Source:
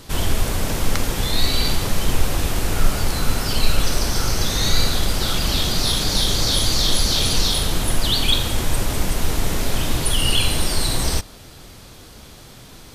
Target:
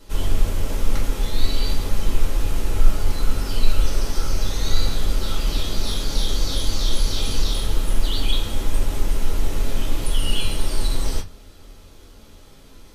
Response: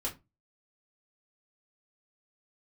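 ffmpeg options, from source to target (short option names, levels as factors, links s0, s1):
-filter_complex "[1:a]atrim=start_sample=2205[s0];[0:a][s0]afir=irnorm=-1:irlink=0,volume=0.316"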